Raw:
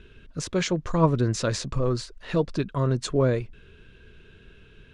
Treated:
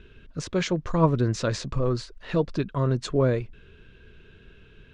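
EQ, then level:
high-frequency loss of the air 59 metres
0.0 dB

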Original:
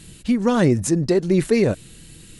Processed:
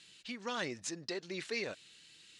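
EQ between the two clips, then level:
resonant band-pass 4,600 Hz, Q 0.79
high-frequency loss of the air 100 metres
−3.0 dB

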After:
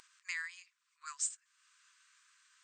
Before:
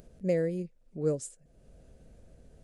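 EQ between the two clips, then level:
linear-phase brick-wall band-pass 980–8,800 Hz
+8.0 dB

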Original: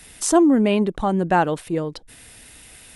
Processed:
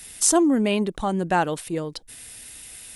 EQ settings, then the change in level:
high-shelf EQ 3,300 Hz +10.5 dB
−4.0 dB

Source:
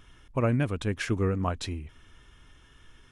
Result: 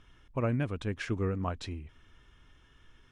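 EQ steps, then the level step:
high-frequency loss of the air 58 metres
−4.5 dB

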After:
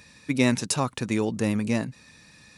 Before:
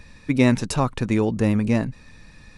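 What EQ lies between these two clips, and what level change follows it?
high-pass filter 110 Hz 12 dB per octave
high-shelf EQ 3,400 Hz +10.5 dB
−4.5 dB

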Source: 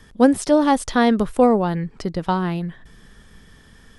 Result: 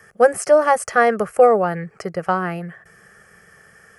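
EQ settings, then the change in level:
high-pass filter 180 Hz 12 dB per octave
parametric band 1,100 Hz +10.5 dB 0.51 octaves
phaser with its sweep stopped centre 1,000 Hz, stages 6
+4.5 dB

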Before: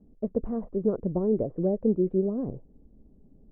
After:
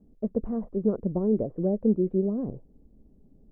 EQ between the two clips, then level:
dynamic equaliser 210 Hz, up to +4 dB, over −37 dBFS, Q 4.4
−1.0 dB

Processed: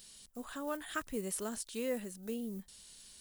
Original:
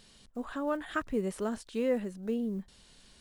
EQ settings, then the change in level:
first-order pre-emphasis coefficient 0.8
high-shelf EQ 8,300 Hz +5.5 dB
+6.5 dB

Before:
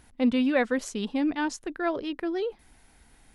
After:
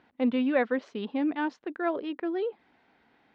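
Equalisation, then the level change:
high-pass filter 240 Hz 12 dB per octave
low-pass filter 4,100 Hz 24 dB per octave
high-shelf EQ 3,200 Hz −10.5 dB
0.0 dB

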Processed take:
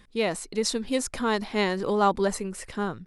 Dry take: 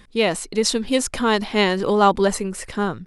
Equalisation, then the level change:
dynamic equaliser 3,000 Hz, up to −5 dB, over −40 dBFS, Q 4
−6.5 dB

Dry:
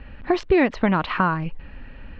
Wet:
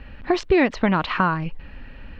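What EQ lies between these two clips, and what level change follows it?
high-shelf EQ 5,700 Hz +11.5 dB
0.0 dB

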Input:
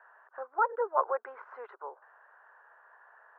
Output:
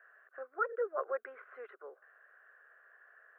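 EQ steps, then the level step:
phaser with its sweep stopped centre 2,200 Hz, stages 4
+1.0 dB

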